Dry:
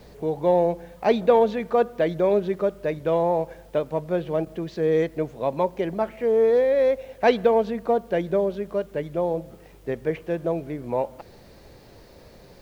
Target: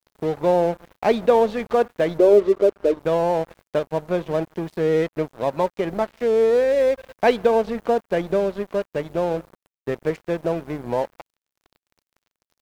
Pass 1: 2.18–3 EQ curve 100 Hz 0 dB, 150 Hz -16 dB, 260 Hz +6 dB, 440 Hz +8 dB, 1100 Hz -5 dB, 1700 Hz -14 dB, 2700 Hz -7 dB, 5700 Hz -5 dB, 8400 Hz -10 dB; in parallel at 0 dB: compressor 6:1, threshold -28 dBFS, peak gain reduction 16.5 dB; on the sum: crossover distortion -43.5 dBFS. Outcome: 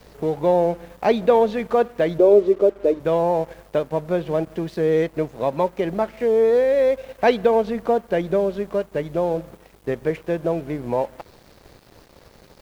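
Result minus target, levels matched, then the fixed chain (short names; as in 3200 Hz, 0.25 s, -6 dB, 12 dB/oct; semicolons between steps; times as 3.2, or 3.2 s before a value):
crossover distortion: distortion -8 dB
2.18–3 EQ curve 100 Hz 0 dB, 150 Hz -16 dB, 260 Hz +6 dB, 440 Hz +8 dB, 1100 Hz -5 dB, 1700 Hz -14 dB, 2700 Hz -7 dB, 5700 Hz -5 dB, 8400 Hz -10 dB; in parallel at 0 dB: compressor 6:1, threshold -28 dBFS, peak gain reduction 16.5 dB; on the sum: crossover distortion -34 dBFS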